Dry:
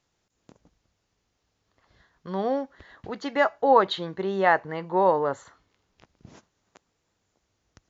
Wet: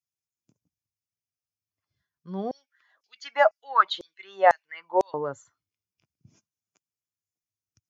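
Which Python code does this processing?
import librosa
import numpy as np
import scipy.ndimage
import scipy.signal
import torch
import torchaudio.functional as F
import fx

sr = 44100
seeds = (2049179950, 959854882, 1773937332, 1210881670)

y = fx.bin_expand(x, sr, power=1.5)
y = scipy.signal.sosfilt(scipy.signal.butter(4, 100.0, 'highpass', fs=sr, output='sos'), y)
y = fx.filter_lfo_highpass(y, sr, shape='saw_down', hz=2.0, low_hz=460.0, high_hz=6100.0, q=3.6, at=(2.51, 5.14))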